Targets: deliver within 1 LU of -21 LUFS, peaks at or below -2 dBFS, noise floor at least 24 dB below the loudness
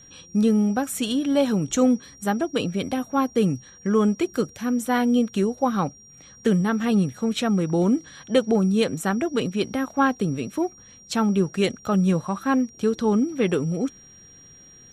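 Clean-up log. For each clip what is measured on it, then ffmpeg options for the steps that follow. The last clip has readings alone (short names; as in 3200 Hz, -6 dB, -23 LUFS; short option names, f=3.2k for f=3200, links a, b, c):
steady tone 5700 Hz; tone level -47 dBFS; loudness -23.5 LUFS; peak -6.0 dBFS; loudness target -21.0 LUFS
-> -af "bandreject=f=5.7k:w=30"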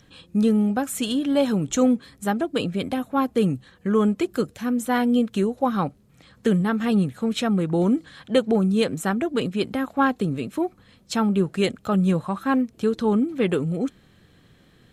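steady tone none; loudness -23.5 LUFS; peak -6.0 dBFS; loudness target -21.0 LUFS
-> -af "volume=2.5dB"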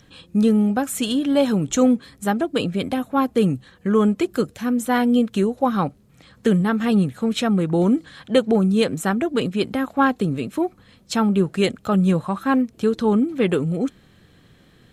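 loudness -21.0 LUFS; peak -3.5 dBFS; noise floor -54 dBFS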